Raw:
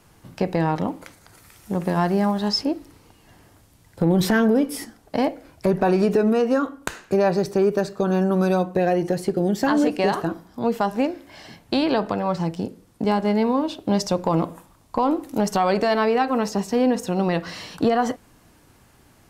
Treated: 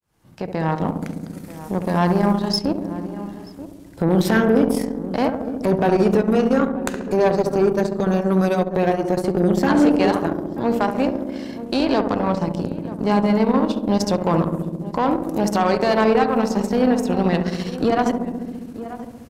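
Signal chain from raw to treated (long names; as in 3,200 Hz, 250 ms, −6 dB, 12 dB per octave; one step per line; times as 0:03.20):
fade in at the beginning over 0.90 s
on a send: feedback echo with a low-pass in the loop 68 ms, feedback 84%, low-pass 840 Hz, level −4 dB
on the sum: harmonic generator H 6 −24 dB, 7 −30 dB, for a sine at −5.5 dBFS
transient designer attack −4 dB, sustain −8 dB
slap from a distant wall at 160 metres, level −18 dB
in parallel at +1 dB: downward compressor, threshold −31 dBFS, peak gain reduction 17 dB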